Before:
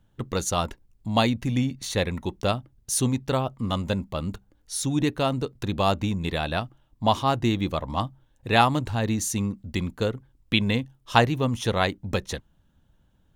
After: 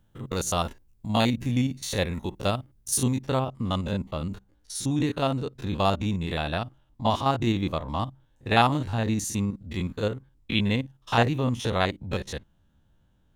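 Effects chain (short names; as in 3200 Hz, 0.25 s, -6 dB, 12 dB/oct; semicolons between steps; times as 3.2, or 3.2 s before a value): stepped spectrum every 50 ms; high shelf 9500 Hz +5.5 dB, from 3.22 s -4 dB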